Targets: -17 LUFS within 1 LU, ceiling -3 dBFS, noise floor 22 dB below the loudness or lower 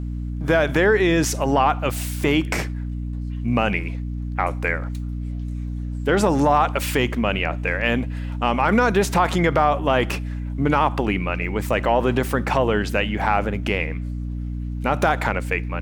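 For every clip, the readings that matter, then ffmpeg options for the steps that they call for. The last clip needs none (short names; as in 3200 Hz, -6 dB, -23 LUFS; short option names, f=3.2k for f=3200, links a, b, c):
hum 60 Hz; harmonics up to 300 Hz; hum level -25 dBFS; loudness -21.5 LUFS; peak -3.5 dBFS; loudness target -17.0 LUFS
-> -af "bandreject=f=60:t=h:w=6,bandreject=f=120:t=h:w=6,bandreject=f=180:t=h:w=6,bandreject=f=240:t=h:w=6,bandreject=f=300:t=h:w=6"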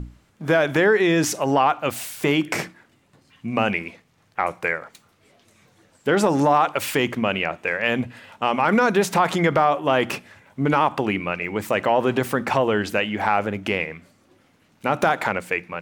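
hum none; loudness -21.5 LUFS; peak -4.0 dBFS; loudness target -17.0 LUFS
-> -af "volume=4.5dB,alimiter=limit=-3dB:level=0:latency=1"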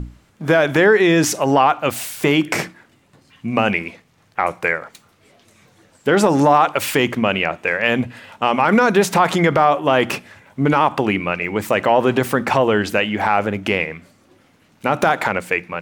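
loudness -17.5 LUFS; peak -3.0 dBFS; noise floor -56 dBFS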